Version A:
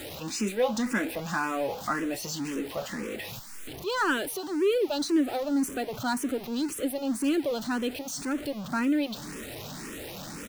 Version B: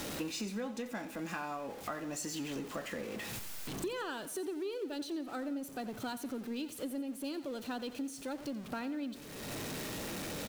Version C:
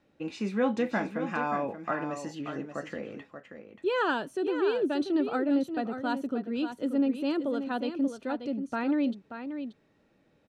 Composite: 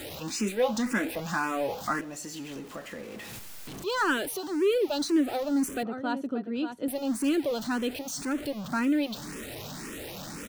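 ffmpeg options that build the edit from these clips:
-filter_complex "[0:a]asplit=3[s0][s1][s2];[s0]atrim=end=2.012[s3];[1:a]atrim=start=2.008:end=3.832[s4];[s1]atrim=start=3.828:end=5.832[s5];[2:a]atrim=start=5.828:end=6.882[s6];[s2]atrim=start=6.878[s7];[s3][s4]acrossfade=d=0.004:c1=hsin:c2=hsin[s8];[s8][s5]acrossfade=d=0.004:c1=hsin:c2=hsin[s9];[s9][s6]acrossfade=d=0.004:c1=hsin:c2=hsin[s10];[s10][s7]acrossfade=d=0.004:c1=hsin:c2=hsin"

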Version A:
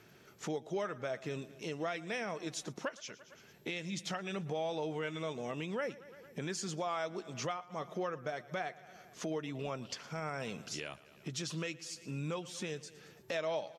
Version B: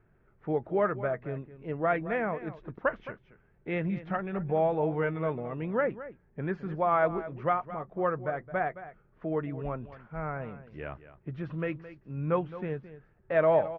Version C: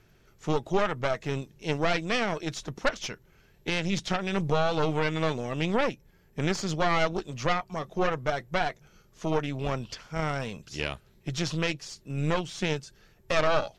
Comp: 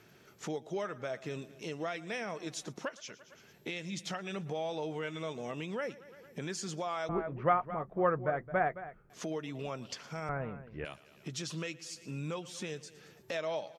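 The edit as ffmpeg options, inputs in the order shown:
-filter_complex "[1:a]asplit=2[s0][s1];[0:a]asplit=3[s2][s3][s4];[s2]atrim=end=7.092[s5];[s0]atrim=start=7.088:end=9.102[s6];[s3]atrim=start=9.098:end=10.292[s7];[s1]atrim=start=10.288:end=10.852[s8];[s4]atrim=start=10.848[s9];[s5][s6]acrossfade=d=0.004:c1=hsin:c2=hsin[s10];[s10][s7]acrossfade=d=0.004:c1=hsin:c2=hsin[s11];[s11][s8]acrossfade=d=0.004:c1=hsin:c2=hsin[s12];[s12][s9]acrossfade=d=0.004:c1=hsin:c2=hsin"

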